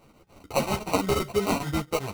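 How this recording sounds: chopped level 7.5 Hz, depth 60%, duty 85%; aliases and images of a low sample rate 1700 Hz, jitter 0%; a shimmering, thickened sound

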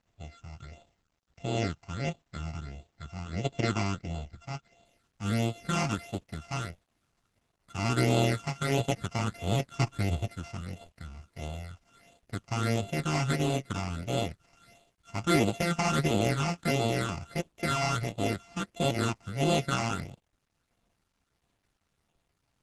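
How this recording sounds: a buzz of ramps at a fixed pitch in blocks of 64 samples; phasing stages 8, 1.5 Hz, lowest notch 480–1700 Hz; a quantiser's noise floor 12-bit, dither none; Opus

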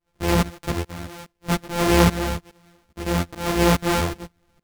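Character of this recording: a buzz of ramps at a fixed pitch in blocks of 256 samples; tremolo saw up 2.4 Hz, depth 95%; a shimmering, thickened sound

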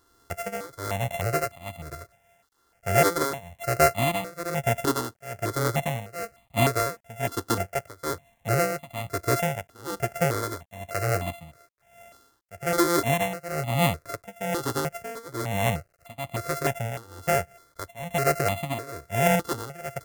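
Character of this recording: a buzz of ramps at a fixed pitch in blocks of 64 samples; tremolo triangle 1.1 Hz, depth 95%; a quantiser's noise floor 12-bit, dither none; notches that jump at a steady rate 3.3 Hz 650–1500 Hz

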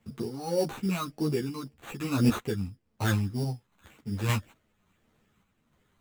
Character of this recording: phasing stages 12, 1.8 Hz, lowest notch 510–2100 Hz; aliases and images of a low sample rate 5100 Hz, jitter 0%; random-step tremolo 3.5 Hz; a shimmering, thickened sound

